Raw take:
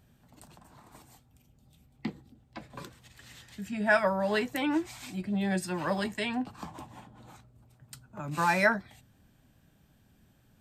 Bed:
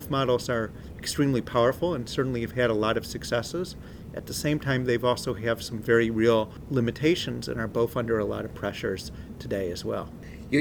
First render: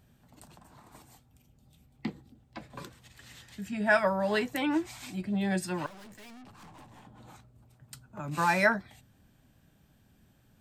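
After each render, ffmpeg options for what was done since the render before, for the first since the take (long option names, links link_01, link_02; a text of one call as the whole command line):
ffmpeg -i in.wav -filter_complex "[0:a]asettb=1/sr,asplit=3[link_01][link_02][link_03];[link_01]atrim=end=5.864[link_04];[link_02]atrim=start=5.86:end=7.05,asetpts=PTS-STARTPTS,afade=type=in:duration=0.004:curve=qsin,afade=type=out:start_time=1.186:duration=0.004:curve=qsin,aeval=exprs='(tanh(282*val(0)+0.35)-tanh(0.35))/282':channel_layout=same[link_05];[link_03]atrim=start=7.046[link_06];[link_04][link_05]acrossfade=duration=0.004:curve1=hsin:curve2=qsin[link_07];[link_07][link_06]acrossfade=duration=0.004:curve1=qsin:curve2=hsin" out.wav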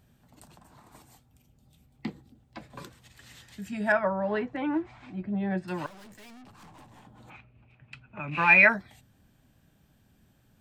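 ffmpeg -i in.wav -filter_complex "[0:a]asettb=1/sr,asplit=3[link_01][link_02][link_03];[link_01]atrim=end=3.924[link_04];[link_02]atrim=start=3.92:end=5.68,asetpts=PTS-STARTPTS,afade=type=in:duration=0.004:curve=qsin,afade=type=out:start_time=1.756:duration=0.004:curve=qsin,lowpass=1700[link_05];[link_03]atrim=start=5.676[link_06];[link_04][link_05]acrossfade=duration=0.004:curve1=hsin:curve2=qsin[link_07];[link_07][link_06]acrossfade=duration=0.004:curve1=qsin:curve2=hsin,asplit=3[link_08][link_09][link_10];[link_08]afade=type=out:start_time=7.29:duration=0.02[link_11];[link_09]lowpass=frequency=2500:width_type=q:width=8.8,afade=type=in:start_time=7.29:duration=0.02,afade=type=out:start_time=8.68:duration=0.02[link_12];[link_10]afade=type=in:start_time=8.68:duration=0.02[link_13];[link_11][link_12][link_13]amix=inputs=3:normalize=0" out.wav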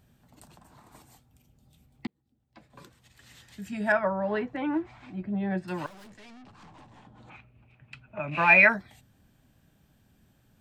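ffmpeg -i in.wav -filter_complex "[0:a]asettb=1/sr,asplit=3[link_01][link_02][link_03];[link_01]atrim=end=6.104[link_04];[link_02]atrim=start=6.1:end=7.32,asetpts=PTS-STARTPTS,afade=type=in:duration=0.004:curve=qsin,afade=type=out:start_time=1.216:duration=0.004:curve=qsin,lowpass=5900[link_05];[link_03]atrim=start=7.316[link_06];[link_04][link_05]acrossfade=duration=0.004:curve1=hsin:curve2=qsin[link_07];[link_07][link_06]acrossfade=duration=0.004:curve1=qsin:curve2=hsin,asettb=1/sr,asplit=3[link_08][link_09][link_10];[link_08]atrim=end=8.074[link_11];[link_09]atrim=start=8.07:end=8.6,asetpts=PTS-STARTPTS,afade=type=in:duration=0.004:curve=qsin,afade=type=out:start_time=0.526:duration=0.004:curve=qsin,equalizer=frequency=630:width=5.3:gain=13[link_12];[link_10]atrim=start=8.596[link_13];[link_11][link_12]acrossfade=duration=0.004:curve1=hsin:curve2=qsin[link_14];[link_14][link_13]acrossfade=duration=0.004:curve1=qsin:curve2=hsin,asplit=2[link_15][link_16];[link_15]atrim=end=2.07,asetpts=PTS-STARTPTS,afade=type=out:start_time=2.066:duration=0.004:curve=hsin[link_17];[link_16]atrim=start=2.07,asetpts=PTS-STARTPTS,afade=type=in:duration=1.67[link_18];[link_17][link_18]concat=n=2:v=0:a=1" out.wav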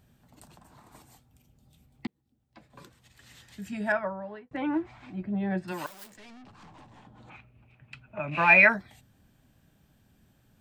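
ffmpeg -i in.wav -filter_complex "[0:a]asplit=3[link_01][link_02][link_03];[link_01]afade=type=out:start_time=5.71:duration=0.02[link_04];[link_02]aemphasis=mode=production:type=bsi,afade=type=in:start_time=5.71:duration=0.02,afade=type=out:start_time=6.15:duration=0.02[link_05];[link_03]afade=type=in:start_time=6.15:duration=0.02[link_06];[link_04][link_05][link_06]amix=inputs=3:normalize=0,asplit=2[link_07][link_08];[link_07]atrim=end=4.51,asetpts=PTS-STARTPTS,afade=type=out:start_time=3.69:duration=0.82[link_09];[link_08]atrim=start=4.51,asetpts=PTS-STARTPTS,afade=type=in:duration=0.004:curve=hsin[link_10];[link_09][link_10]concat=n=2:v=0:a=1" out.wav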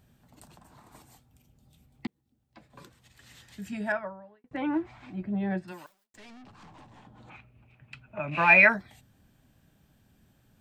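ffmpeg -i in.wav -filter_complex "[0:a]asplit=3[link_01][link_02][link_03];[link_01]atrim=end=4.44,asetpts=PTS-STARTPTS,afade=type=out:start_time=3.74:duration=0.7[link_04];[link_02]atrim=start=4.44:end=6.14,asetpts=PTS-STARTPTS,afade=type=in:duration=0.004:curve=hsin,afade=type=out:start_time=1.07:duration=0.63:curve=qua[link_05];[link_03]atrim=start=6.14,asetpts=PTS-STARTPTS,afade=type=in:duration=0.004:curve=hsin[link_06];[link_04][link_05][link_06]concat=n=3:v=0:a=1" out.wav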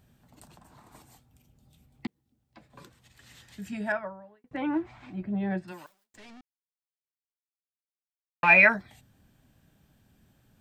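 ffmpeg -i in.wav -filter_complex "[0:a]asplit=3[link_01][link_02][link_03];[link_01]atrim=end=6.41,asetpts=PTS-STARTPTS,afade=type=out:start_time=6.406:duration=0.004:curve=hsin[link_04];[link_02]atrim=start=6.41:end=8.43,asetpts=PTS-STARTPTS,volume=0[link_05];[link_03]atrim=start=8.43,asetpts=PTS-STARTPTS,afade=type=in:duration=0.004:curve=hsin[link_06];[link_04][link_05][link_06]concat=n=3:v=0:a=1" out.wav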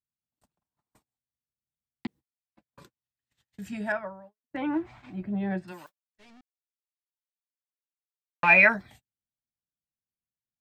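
ffmpeg -i in.wav -af "agate=range=-41dB:threshold=-49dB:ratio=16:detection=peak" out.wav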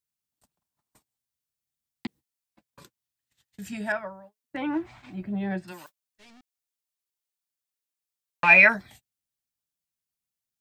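ffmpeg -i in.wav -af "highshelf=frequency=3100:gain=8" out.wav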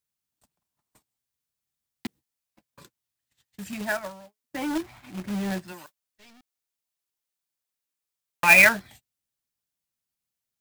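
ffmpeg -i in.wav -af "acrusher=bits=2:mode=log:mix=0:aa=0.000001" out.wav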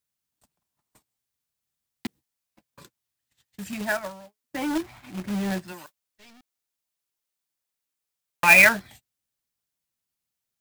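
ffmpeg -i in.wav -af "volume=1.5dB,alimiter=limit=-3dB:level=0:latency=1" out.wav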